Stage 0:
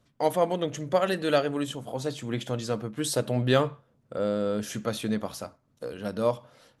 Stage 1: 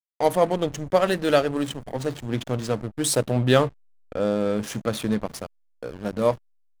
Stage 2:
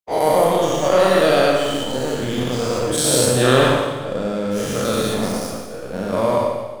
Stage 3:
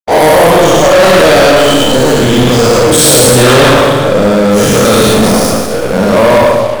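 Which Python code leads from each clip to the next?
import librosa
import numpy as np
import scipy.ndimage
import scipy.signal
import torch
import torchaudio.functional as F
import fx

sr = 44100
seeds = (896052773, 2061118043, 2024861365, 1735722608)

y1 = fx.dynamic_eq(x, sr, hz=9400.0, q=1.2, threshold_db=-56.0, ratio=4.0, max_db=6)
y1 = fx.backlash(y1, sr, play_db=-31.0)
y1 = y1 * librosa.db_to_amplitude(4.5)
y2 = fx.spec_dilate(y1, sr, span_ms=240)
y2 = fx.rev_schroeder(y2, sr, rt60_s=1.3, comb_ms=32, drr_db=0.0)
y2 = y2 * librosa.db_to_amplitude(-3.5)
y3 = fx.leveller(y2, sr, passes=5)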